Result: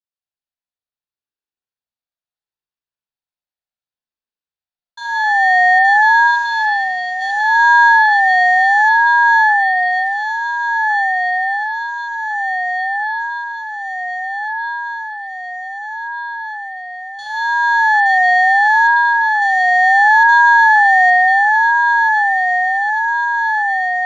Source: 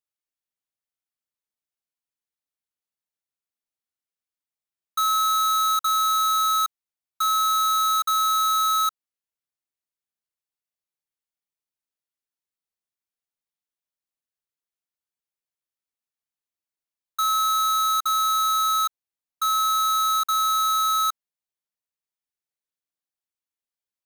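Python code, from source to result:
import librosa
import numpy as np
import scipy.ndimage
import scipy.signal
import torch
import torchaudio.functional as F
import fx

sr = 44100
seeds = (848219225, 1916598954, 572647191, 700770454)

y = fx.median_filter(x, sr, points=41, at=(6.27, 7.22))
y = fx.cabinet(y, sr, low_hz=280.0, low_slope=12, high_hz=5700.0, hz=(360.0, 670.0, 1600.0, 2700.0, 4300.0), db=(3, -3, -8, -8, 7))
y = fx.notch(y, sr, hz=750.0, q=12.0)
y = fx.echo_diffused(y, sr, ms=1509, feedback_pct=69, wet_db=-7)
y = fx.rev_spring(y, sr, rt60_s=3.4, pass_ms=(36,), chirp_ms=80, drr_db=-10.0)
y = fx.ring_lfo(y, sr, carrier_hz=450.0, swing_pct=25, hz=0.71)
y = y * 10.0 ** (-5.0 / 20.0)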